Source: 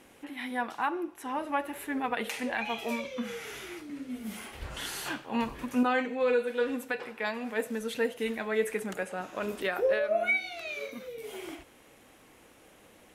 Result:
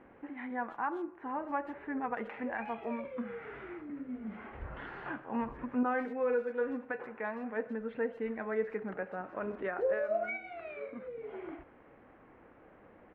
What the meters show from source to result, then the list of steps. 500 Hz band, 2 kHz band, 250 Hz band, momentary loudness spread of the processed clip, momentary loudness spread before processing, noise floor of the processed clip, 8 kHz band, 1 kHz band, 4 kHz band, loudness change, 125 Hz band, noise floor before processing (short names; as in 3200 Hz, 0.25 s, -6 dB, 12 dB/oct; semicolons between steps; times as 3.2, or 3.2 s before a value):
-4.0 dB, -7.5 dB, -4.0 dB, 12 LU, 14 LU, -59 dBFS, under -35 dB, -4.0 dB, under -20 dB, -5.0 dB, -3.0 dB, -58 dBFS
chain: LPF 1800 Hz 24 dB/oct; in parallel at -0.5 dB: compressor, threshold -43 dBFS, peak gain reduction 19.5 dB; on the sum: speakerphone echo 0.13 s, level -20 dB; gain -5.5 dB